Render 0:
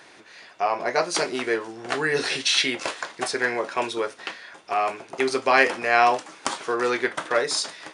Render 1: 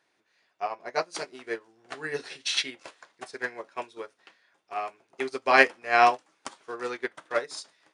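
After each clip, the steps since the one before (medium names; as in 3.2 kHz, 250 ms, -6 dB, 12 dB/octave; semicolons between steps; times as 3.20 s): upward expansion 2.5:1, over -31 dBFS; trim +1.5 dB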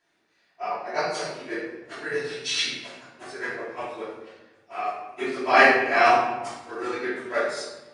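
phase randomisation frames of 50 ms; simulated room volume 470 m³, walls mixed, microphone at 2.9 m; trim -4 dB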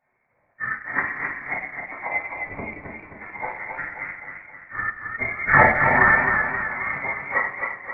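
frequency inversion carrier 2.5 kHz; transient shaper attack +4 dB, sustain -6 dB; modulated delay 264 ms, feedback 52%, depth 59 cents, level -5.5 dB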